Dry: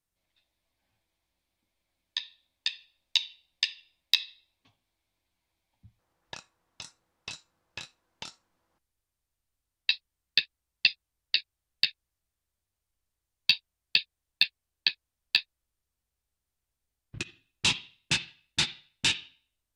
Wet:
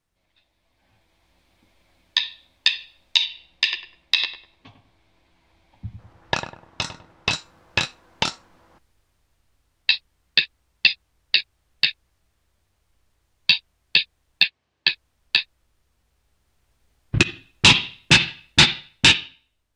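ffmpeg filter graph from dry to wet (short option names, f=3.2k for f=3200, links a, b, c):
-filter_complex "[0:a]asettb=1/sr,asplit=3[a][b][c];[a]atrim=end=3.254[d];[b]atrim=start=3.25:end=7.33,asetpts=PTS-STARTPTS,afade=t=in:d=0.004:c=qsin,afade=t=out:st=4.076:d=0.004:c=qsin,highshelf=f=7.6k:g=-9.5,asplit=2[e][f];[f]adelay=100,lowpass=f=1.3k:p=1,volume=-8dB,asplit=2[g][h];[h]adelay=100,lowpass=f=1.3k:p=1,volume=0.36,asplit=2[i][j];[j]adelay=100,lowpass=f=1.3k:p=1,volume=0.36,asplit=2[k][l];[l]adelay=100,lowpass=f=1.3k:p=1,volume=0.36[m];[e][g][i][k][m]amix=inputs=5:normalize=0,atrim=end_sample=179928[n];[c]atrim=start=7.326[o];[d][n]acrossfade=d=0.004:c1=hsin:c2=qsin[p];[p][o]acrossfade=d=0.004:c1=qsin:c2=hsin,asettb=1/sr,asplit=3[q][r][s];[q]atrim=end=14.434[t];[r]atrim=start=14.43:end=14.87,asetpts=PTS-STARTPTS,afade=t=in:d=0.004:c=qsin,afade=t=out:st=0.436:d=0.004:c=qsin,highpass=120,lowpass=4.6k,bandreject=f=1.4k:w=20[u];[s]atrim=start=14.866[v];[t][u]acrossfade=d=0.004:c1=hsin:c2=qsin[w];[w][v]acrossfade=d=0.004:c1=qsin:c2=hsin,lowpass=f=3.1k:p=1,dynaudnorm=f=170:g=13:m=11dB,alimiter=level_in=12dB:limit=-1dB:release=50:level=0:latency=1,volume=-1dB"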